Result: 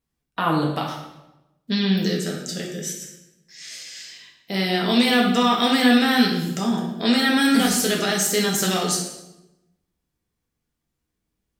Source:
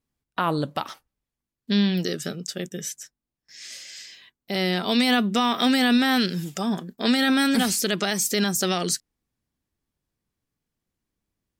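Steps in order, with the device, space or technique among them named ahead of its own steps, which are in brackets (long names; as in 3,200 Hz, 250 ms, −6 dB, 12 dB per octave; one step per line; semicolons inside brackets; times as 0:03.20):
bathroom (convolution reverb RT60 0.95 s, pre-delay 4 ms, DRR −1.5 dB)
level −1 dB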